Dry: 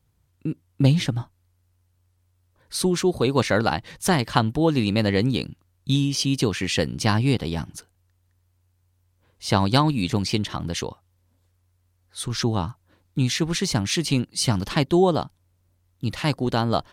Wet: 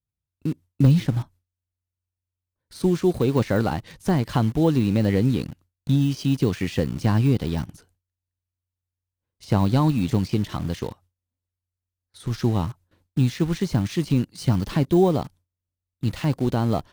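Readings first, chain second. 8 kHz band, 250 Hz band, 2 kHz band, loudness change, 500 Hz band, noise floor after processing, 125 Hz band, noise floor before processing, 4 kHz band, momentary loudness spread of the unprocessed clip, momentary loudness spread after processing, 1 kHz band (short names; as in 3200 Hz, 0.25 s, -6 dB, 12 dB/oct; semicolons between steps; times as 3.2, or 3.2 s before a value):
-11.5 dB, +1.5 dB, -7.0 dB, 0.0 dB, -0.5 dB, under -85 dBFS, +2.5 dB, -67 dBFS, -10.0 dB, 13 LU, 11 LU, -4.5 dB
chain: low shelf 490 Hz +6.5 dB; de-esser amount 95%; gate with hold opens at -45 dBFS; high shelf 2200 Hz +4 dB; in parallel at -8 dB: bit-crush 5-bit; on the sum: gain -6.5 dB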